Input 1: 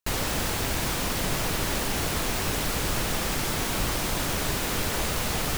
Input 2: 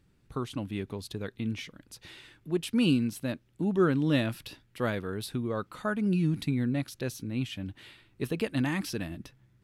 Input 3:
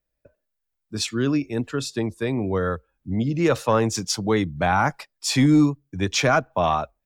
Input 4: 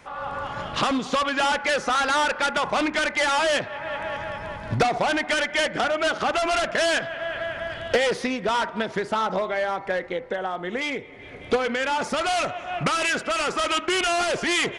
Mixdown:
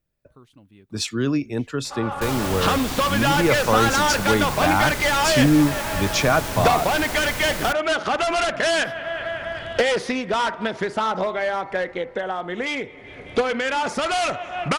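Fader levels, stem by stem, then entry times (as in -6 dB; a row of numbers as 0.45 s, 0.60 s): -2.0 dB, -16.5 dB, 0.0 dB, +1.5 dB; 2.15 s, 0.00 s, 0.00 s, 1.85 s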